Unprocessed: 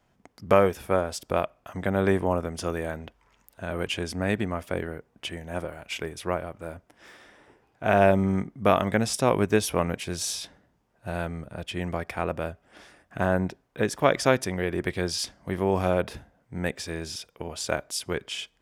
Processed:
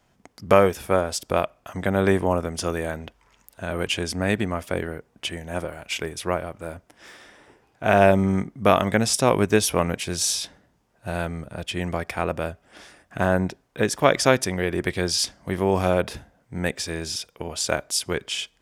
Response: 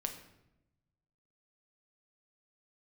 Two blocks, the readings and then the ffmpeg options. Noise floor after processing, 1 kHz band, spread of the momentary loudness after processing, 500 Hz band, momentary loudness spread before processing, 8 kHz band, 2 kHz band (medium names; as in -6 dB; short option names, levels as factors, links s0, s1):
-65 dBFS, +3.5 dB, 13 LU, +3.0 dB, 14 LU, +7.5 dB, +4.0 dB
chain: -af "equalizer=f=7300:w=0.46:g=4.5,volume=1.41"